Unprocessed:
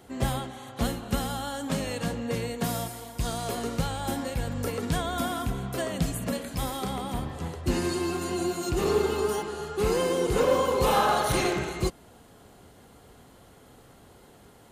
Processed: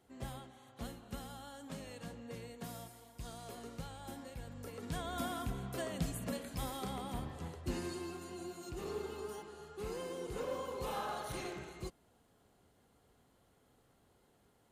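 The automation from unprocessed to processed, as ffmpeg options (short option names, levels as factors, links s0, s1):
-af "volume=0.335,afade=t=in:st=4.7:d=0.51:silence=0.421697,afade=t=out:st=7.27:d=1:silence=0.421697"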